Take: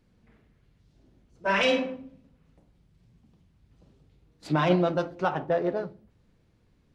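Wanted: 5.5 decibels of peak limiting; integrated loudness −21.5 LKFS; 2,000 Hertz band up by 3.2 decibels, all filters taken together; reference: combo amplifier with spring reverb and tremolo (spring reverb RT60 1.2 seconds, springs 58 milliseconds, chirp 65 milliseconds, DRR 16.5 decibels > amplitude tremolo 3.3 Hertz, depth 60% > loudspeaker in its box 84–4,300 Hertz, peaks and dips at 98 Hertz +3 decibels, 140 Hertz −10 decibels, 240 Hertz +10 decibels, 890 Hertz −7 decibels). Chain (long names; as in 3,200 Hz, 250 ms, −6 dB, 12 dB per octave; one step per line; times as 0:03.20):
parametric band 2,000 Hz +4.5 dB
brickwall limiter −15 dBFS
spring reverb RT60 1.2 s, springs 58 ms, chirp 65 ms, DRR 16.5 dB
amplitude tremolo 3.3 Hz, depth 60%
loudspeaker in its box 84–4,300 Hz, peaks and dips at 98 Hz +3 dB, 140 Hz −10 dB, 240 Hz +10 dB, 890 Hz −7 dB
level +8.5 dB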